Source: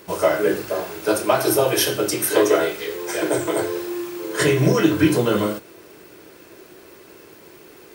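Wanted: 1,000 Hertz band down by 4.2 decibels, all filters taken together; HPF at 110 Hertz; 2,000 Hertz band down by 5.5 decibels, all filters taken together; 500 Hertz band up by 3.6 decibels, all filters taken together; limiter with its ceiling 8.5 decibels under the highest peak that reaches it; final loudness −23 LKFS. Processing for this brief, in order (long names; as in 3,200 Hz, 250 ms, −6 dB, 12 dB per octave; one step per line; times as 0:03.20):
high-pass filter 110 Hz
parametric band 500 Hz +6.5 dB
parametric band 1,000 Hz −7.5 dB
parametric band 2,000 Hz −5 dB
level −2.5 dB
brickwall limiter −11.5 dBFS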